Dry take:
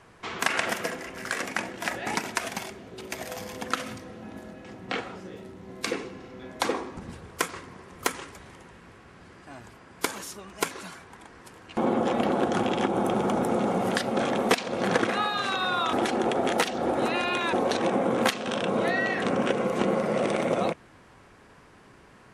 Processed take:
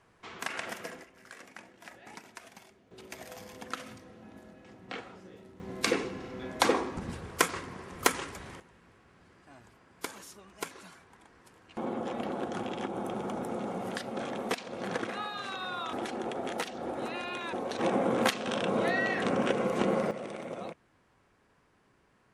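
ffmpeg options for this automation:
ffmpeg -i in.wav -af "asetnsamples=nb_out_samples=441:pad=0,asendcmd='1.04 volume volume -19dB;2.91 volume volume -9.5dB;5.6 volume volume 2dB;8.6 volume volume -10dB;17.79 volume volume -3dB;20.11 volume volume -14dB',volume=-10.5dB" out.wav

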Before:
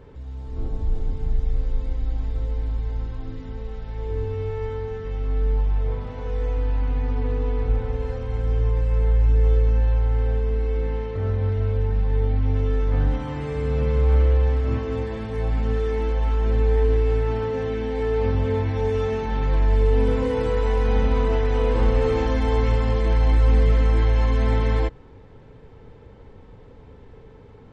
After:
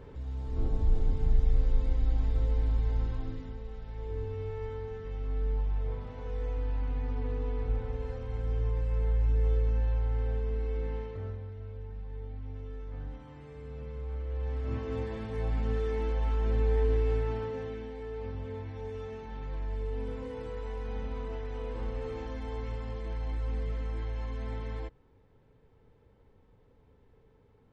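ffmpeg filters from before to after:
ffmpeg -i in.wav -af "volume=10dB,afade=type=out:start_time=3.12:duration=0.47:silence=0.446684,afade=type=out:start_time=10.98:duration=0.48:silence=0.298538,afade=type=in:start_time=14.25:duration=0.73:silence=0.251189,afade=type=out:start_time=17.13:duration=0.87:silence=0.354813" out.wav

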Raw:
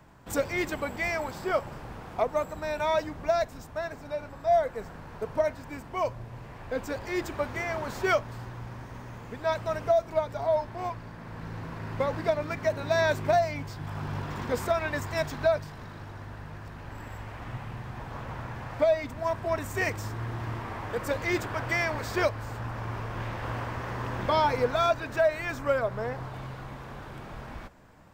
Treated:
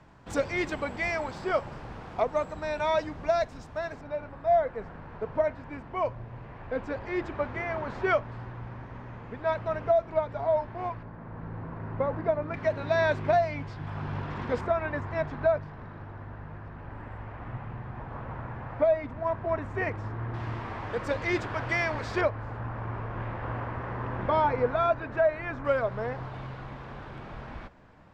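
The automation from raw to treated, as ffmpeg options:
ffmpeg -i in.wav -af "asetnsamples=nb_out_samples=441:pad=0,asendcmd='4.01 lowpass f 2500;11.03 lowpass f 1400;12.54 lowpass f 3300;14.61 lowpass f 1800;20.34 lowpass f 4700;22.21 lowpass f 1900;25.65 lowpass f 4000',lowpass=5700" out.wav

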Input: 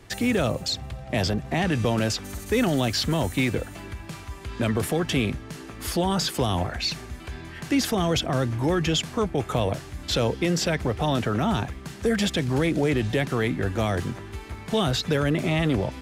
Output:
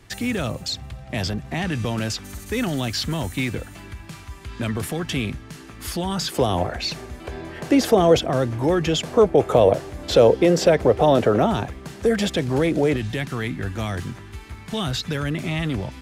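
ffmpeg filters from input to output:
ffmpeg -i in.wav -af "asetnsamples=nb_out_samples=441:pad=0,asendcmd='6.32 equalizer g 7.5;7.25 equalizer g 13.5;8.19 equalizer g 6;9.03 equalizer g 13.5;11.46 equalizer g 5.5;12.96 equalizer g -6.5',equalizer=frequency=520:width_type=o:width=1.5:gain=-4.5" out.wav

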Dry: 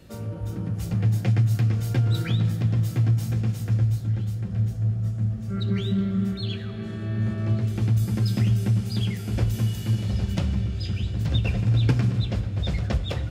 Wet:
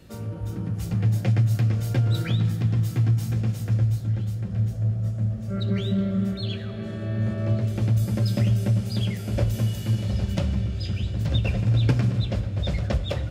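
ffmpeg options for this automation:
ffmpeg -i in.wav -af "asetnsamples=nb_out_samples=441:pad=0,asendcmd='1.07 equalizer g 7;2.37 equalizer g -5;3.36 equalizer g 6.5;4.73 equalizer g 14.5;9.79 equalizer g 8',equalizer=frequency=580:width_type=o:width=0.21:gain=-2.5" out.wav

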